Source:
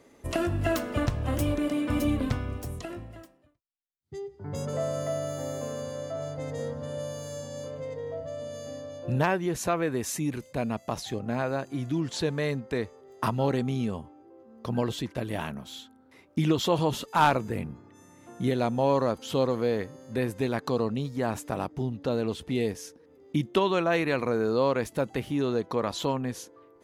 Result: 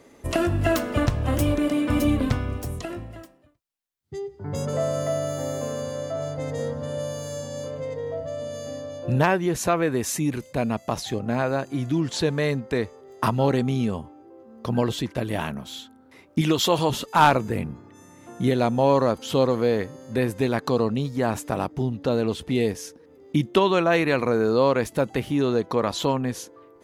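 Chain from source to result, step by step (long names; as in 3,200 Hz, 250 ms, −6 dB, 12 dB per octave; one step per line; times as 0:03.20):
0:16.41–0:16.90: spectral tilt +1.5 dB per octave
level +5 dB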